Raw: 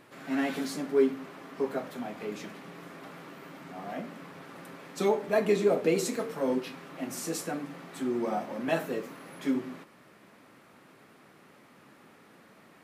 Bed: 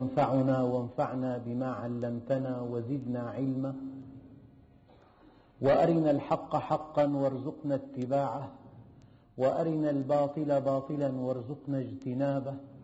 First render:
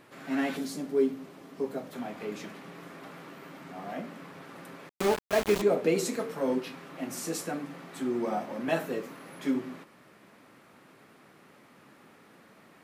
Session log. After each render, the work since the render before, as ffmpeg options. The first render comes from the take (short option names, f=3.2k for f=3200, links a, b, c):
-filter_complex "[0:a]asettb=1/sr,asplit=3[a][b][c];[a]atrim=end=0.574[d];[b]atrim=start=0.57:end=1.93,asetpts=PTS-STARTPTS,afade=t=in:d=0.004:c=qsin,afade=t=out:st=1.356:d=0.004:c=qsin,equalizer=f=1.5k:w=0.55:g=-8[e];[c]atrim=start=1.926[f];[d][e]acrossfade=d=0.004:c1=hsin:c2=qsin[g];[g][f]acrossfade=d=0.004:c1=qsin:c2=hsin,asettb=1/sr,asplit=3[h][i][j];[h]atrim=end=4.894[k];[i]atrim=start=4.89:end=5.62,asetpts=PTS-STARTPTS,afade=t=in:d=0.004:c=qsin,afade=t=out:st=0.726:d=0.004:c=qsin,aeval=exprs='val(0)*gte(abs(val(0)),0.0447)':c=same[l];[j]atrim=start=5.616[m];[k][l]acrossfade=d=0.004:c1=hsin:c2=qsin[n];[n][m]acrossfade=d=0.004:c1=qsin:c2=hsin"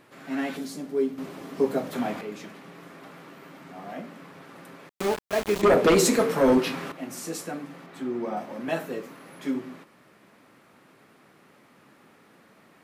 -filter_complex "[0:a]asettb=1/sr,asplit=3[a][b][c];[a]atrim=end=5.634[d];[b]atrim=start=5.63:end=6.92,asetpts=PTS-STARTPTS,afade=t=in:d=0.004:c=qsin,afade=t=out:st=1.286:d=0.004:c=qsin,aeval=exprs='0.211*sin(PI/2*2.51*val(0)/0.211)':c=same[e];[c]atrim=start=6.916[f];[d][e]acrossfade=d=0.004:c1=hsin:c2=qsin[g];[g][f]acrossfade=d=0.004:c1=qsin:c2=hsin,asettb=1/sr,asplit=3[h][i][j];[h]atrim=end=7.864[k];[i]atrim=start=7.86:end=8.37,asetpts=PTS-STARTPTS,afade=t=in:d=0.004:c=qsin,afade=t=out:st=0.506:d=0.004:c=qsin,equalizer=f=9.9k:w=0.56:g=-8.5[l];[j]atrim=start=8.366[m];[k][l]acrossfade=d=0.004:c1=hsin:c2=qsin[n];[n][m]acrossfade=d=0.004:c1=qsin:c2=hsin,asplit=3[o][p][q];[o]atrim=end=1.182[r];[p]atrim=start=1.178:end=2.212,asetpts=PTS-STARTPTS,volume=9dB[s];[q]atrim=start=2.208[t];[r][s]acrossfade=d=0.004:c1=hsin:c2=hsin[u];[u][t]acrossfade=d=0.004:c1=hsin:c2=hsin"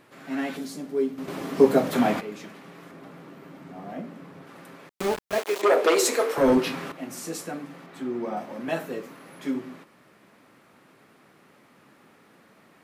-filter_complex "[0:a]asettb=1/sr,asplit=3[a][b][c];[a]atrim=end=2.914[d];[b]atrim=start=2.91:end=4.47,asetpts=PTS-STARTPTS,afade=t=in:d=0.004:c=qsin,afade=t=out:st=1.556:d=0.004:c=qsin,tiltshelf=f=650:g=4.5[e];[c]atrim=start=4.466[f];[d][e]acrossfade=d=0.004:c1=hsin:c2=qsin[g];[g][f]acrossfade=d=0.004:c1=qsin:c2=hsin,asettb=1/sr,asplit=3[h][i][j];[h]atrim=end=5.384[k];[i]atrim=start=5.38:end=6.38,asetpts=PTS-STARTPTS,afade=t=in:d=0.004:c=qsin,afade=t=out:st=0.996:d=0.004:c=qsin,highpass=f=370:w=0.5412,highpass=f=370:w=1.3066[l];[j]atrim=start=6.376[m];[k][l]acrossfade=d=0.004:c1=hsin:c2=qsin[n];[n][m]acrossfade=d=0.004:c1=qsin:c2=hsin,asplit=3[o][p][q];[o]atrim=end=1.282[r];[p]atrim=start=1.278:end=2.202,asetpts=PTS-STARTPTS,volume=7dB[s];[q]atrim=start=2.198[t];[r][s]acrossfade=d=0.004:c1=hsin:c2=hsin[u];[u][t]acrossfade=d=0.004:c1=hsin:c2=hsin"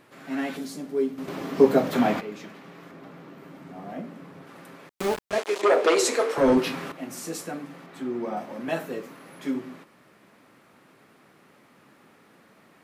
-filter_complex "[0:a]asettb=1/sr,asplit=3[a][b][c];[a]atrim=end=1.294[d];[b]atrim=start=1.29:end=3.38,asetpts=PTS-STARTPTS,afade=t=in:d=0.004:c=qsin,afade=t=out:st=2.086:d=0.004:c=qsin,equalizer=f=9.9k:t=o:w=0.88:g=-6[e];[c]atrim=start=3.376[f];[d][e]acrossfade=d=0.004:c1=hsin:c2=qsin[g];[g][f]acrossfade=d=0.004:c1=qsin:c2=hsin,asettb=1/sr,asplit=3[h][i][j];[h]atrim=end=5.294[k];[i]atrim=start=5.29:end=6.57,asetpts=PTS-STARTPTS,afade=t=in:d=0.004:c=qsin,afade=t=out:st=1.276:d=0.004:c=qsin,lowpass=9.1k[l];[j]atrim=start=6.566[m];[k][l]acrossfade=d=0.004:c1=hsin:c2=qsin[n];[n][m]acrossfade=d=0.004:c1=qsin:c2=hsin"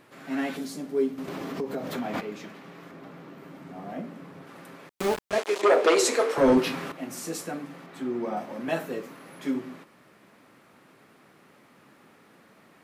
-filter_complex "[0:a]asplit=3[a][b][c];[a]afade=t=out:st=1.12:d=0.02[d];[b]acompressor=threshold=-30dB:ratio=4:attack=3.2:release=140:knee=1:detection=peak,afade=t=in:st=1.12:d=0.02,afade=t=out:st=2.13:d=0.02[e];[c]afade=t=in:st=2.13:d=0.02[f];[d][e][f]amix=inputs=3:normalize=0"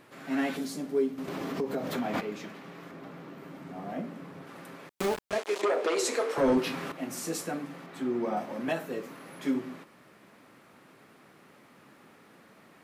-af "alimiter=limit=-18.5dB:level=0:latency=1:release=434"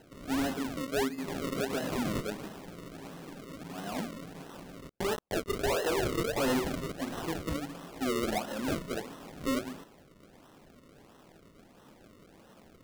-af "acrusher=samples=37:mix=1:aa=0.000001:lfo=1:lforange=37:lforate=1.5,asoftclip=type=hard:threshold=-26dB"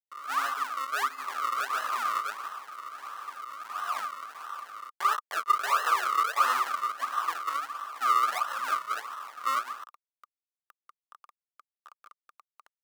-af "acrusher=bits=7:mix=0:aa=0.000001,highpass=f=1.2k:t=q:w=12"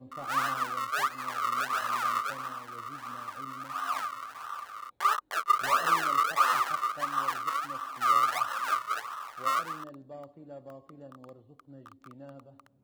-filter_complex "[1:a]volume=-17.5dB[a];[0:a][a]amix=inputs=2:normalize=0"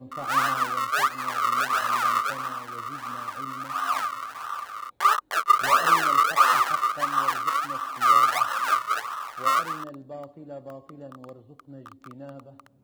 -af "volume=6dB"